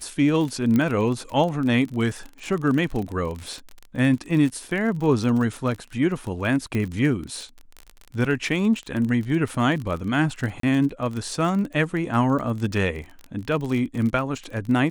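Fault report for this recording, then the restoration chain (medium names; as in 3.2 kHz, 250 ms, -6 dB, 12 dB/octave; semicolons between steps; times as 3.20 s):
crackle 34 per s -28 dBFS
0.76 s: pop -11 dBFS
6.75 s: pop -15 dBFS
10.60–10.63 s: dropout 33 ms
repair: de-click; interpolate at 10.60 s, 33 ms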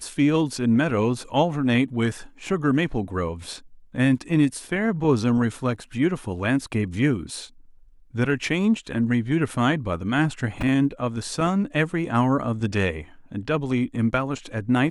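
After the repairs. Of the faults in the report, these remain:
0.76 s: pop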